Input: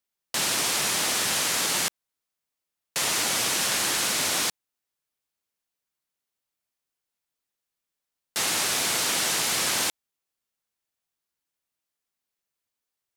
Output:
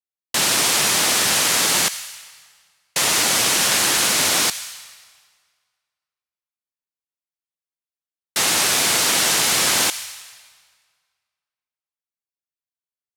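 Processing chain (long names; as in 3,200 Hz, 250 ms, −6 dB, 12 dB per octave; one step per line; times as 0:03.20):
noise gate with hold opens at −22 dBFS
on a send: guitar amp tone stack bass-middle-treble 10-0-10 + convolution reverb RT60 1.8 s, pre-delay 65 ms, DRR 14.5 dB
on the sum: level +7 dB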